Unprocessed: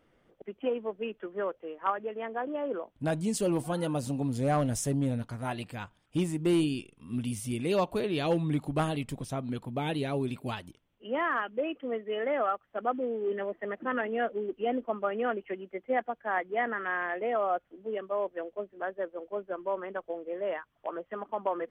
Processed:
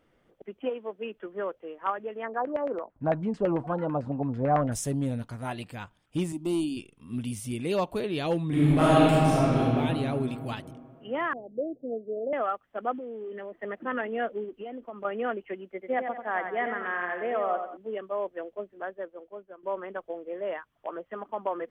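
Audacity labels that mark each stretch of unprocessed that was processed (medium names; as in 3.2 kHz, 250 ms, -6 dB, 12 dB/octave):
0.690000	1.140000	high-pass 500 Hz -> 140 Hz 6 dB/octave
2.230000	4.720000	LFO low-pass saw down 9 Hz 650–2000 Hz
6.320000	6.770000	static phaser centre 460 Hz, stages 6
8.470000	9.580000	reverb throw, RT60 2.8 s, DRR -10.5 dB
11.330000	12.330000	steep low-pass 710 Hz 72 dB/octave
12.980000	13.630000	compression, threshold -35 dBFS
14.440000	15.050000	compression, threshold -35 dBFS
15.720000	17.770000	feedback delay 90 ms, feedback 41%, level -7 dB
18.700000	19.630000	fade out, to -14.5 dB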